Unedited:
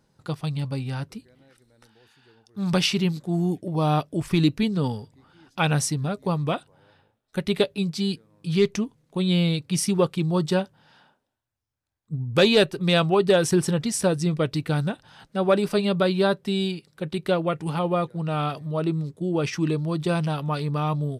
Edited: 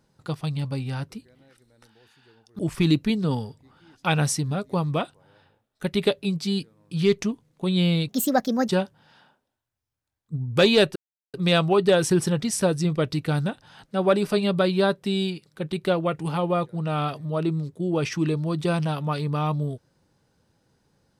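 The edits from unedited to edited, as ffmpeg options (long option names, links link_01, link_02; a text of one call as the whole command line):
ffmpeg -i in.wav -filter_complex "[0:a]asplit=5[link_01][link_02][link_03][link_04][link_05];[link_01]atrim=end=2.592[link_06];[link_02]atrim=start=4.118:end=9.624[link_07];[link_03]atrim=start=9.62:end=10.48,asetpts=PTS-STARTPTS,asetrate=63504,aresample=44100[link_08];[link_04]atrim=start=10.476:end=12.75,asetpts=PTS-STARTPTS,afade=type=out:start_time=2.27:duration=0.004:curve=hsin,apad=pad_dur=0.38[link_09];[link_05]atrim=start=12.75,asetpts=PTS-STARTPTS,afade=type=in:duration=0.004:curve=hsin[link_10];[link_06][link_07]acrossfade=duration=0.004:curve1=hsin:curve2=hsin[link_11];[link_11][link_08]acrossfade=duration=0.004:curve1=hsin:curve2=hsin[link_12];[link_09][link_10]concat=n=2:v=0:a=1[link_13];[link_12][link_13]acrossfade=duration=0.004:curve1=hsin:curve2=hsin" out.wav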